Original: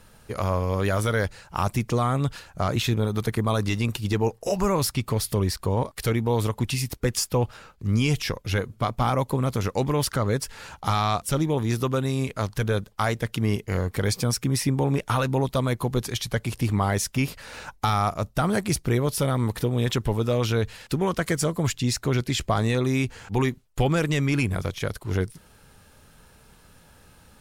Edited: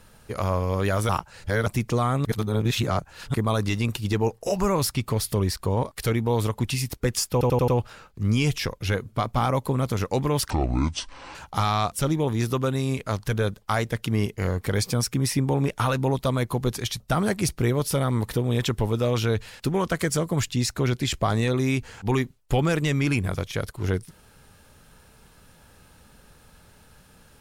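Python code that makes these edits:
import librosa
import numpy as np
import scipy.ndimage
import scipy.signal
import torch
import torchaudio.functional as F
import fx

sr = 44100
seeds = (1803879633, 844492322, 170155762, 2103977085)

y = fx.edit(x, sr, fx.reverse_span(start_s=1.09, length_s=0.57),
    fx.reverse_span(start_s=2.25, length_s=1.09),
    fx.stutter(start_s=7.32, slice_s=0.09, count=5),
    fx.speed_span(start_s=10.14, length_s=0.51, speed=0.6),
    fx.cut(start_s=16.3, length_s=1.97), tone=tone)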